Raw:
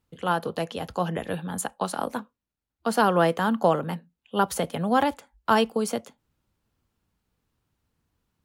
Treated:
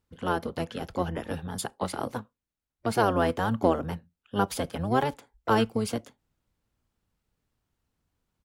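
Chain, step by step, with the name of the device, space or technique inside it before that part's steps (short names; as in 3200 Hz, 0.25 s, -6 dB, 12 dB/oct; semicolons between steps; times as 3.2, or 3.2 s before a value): octave pedal (harmoniser -12 st -3 dB); gain -4.5 dB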